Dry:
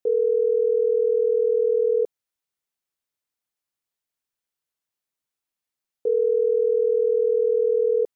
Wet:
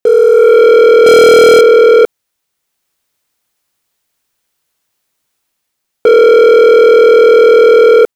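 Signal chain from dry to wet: 1.06–1.61 sample leveller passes 3; AGC gain up to 16 dB; sample leveller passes 3; maximiser +10.5 dB; gain -1 dB

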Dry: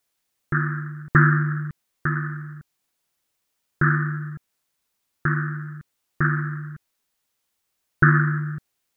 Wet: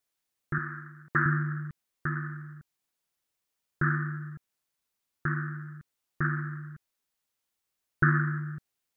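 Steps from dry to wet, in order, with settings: 0.58–1.26 HPF 330 Hz 6 dB/oct; gain -7.5 dB

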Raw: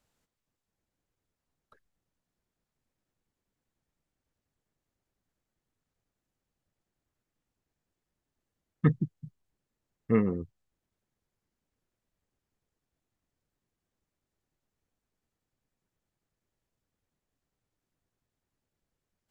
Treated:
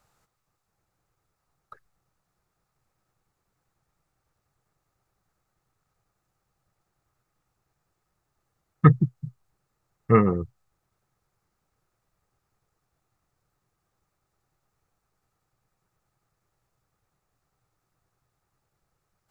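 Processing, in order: thirty-one-band EQ 125 Hz +6 dB, 250 Hz -10 dB, 800 Hz +6 dB, 1250 Hz +10 dB, 3150 Hz -5 dB; gain +7.5 dB

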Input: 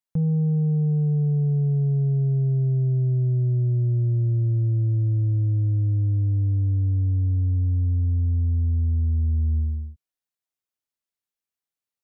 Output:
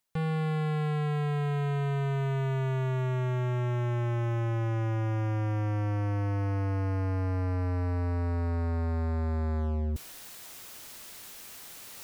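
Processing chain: reverse; upward compressor, threshold -25 dBFS; reverse; hard clip -36.5 dBFS, distortion -9 dB; gain +8 dB

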